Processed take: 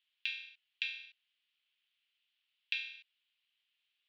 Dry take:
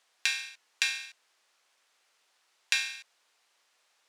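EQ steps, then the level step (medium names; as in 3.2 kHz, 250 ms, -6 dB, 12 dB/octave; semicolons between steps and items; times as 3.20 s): ladder band-pass 3.4 kHz, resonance 60%; distance through air 440 m; treble shelf 4.1 kHz +9.5 dB; +4.0 dB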